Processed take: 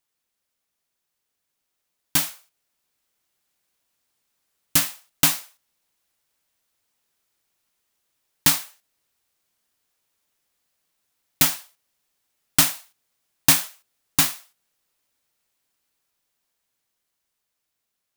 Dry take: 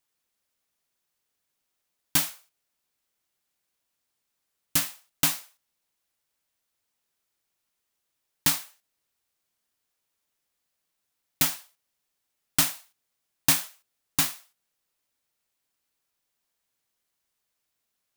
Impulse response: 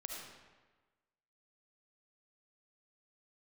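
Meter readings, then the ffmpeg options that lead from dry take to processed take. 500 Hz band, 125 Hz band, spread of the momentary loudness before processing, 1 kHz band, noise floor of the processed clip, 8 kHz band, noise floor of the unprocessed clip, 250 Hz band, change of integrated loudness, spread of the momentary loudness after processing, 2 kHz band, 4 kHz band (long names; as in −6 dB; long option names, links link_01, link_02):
+5.0 dB, +5.0 dB, 13 LU, +5.0 dB, −80 dBFS, +5.0 dB, −81 dBFS, +5.0 dB, +5.0 dB, 14 LU, +5.0 dB, +5.0 dB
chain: -af "dynaudnorm=framelen=700:gausssize=7:maxgain=11.5dB"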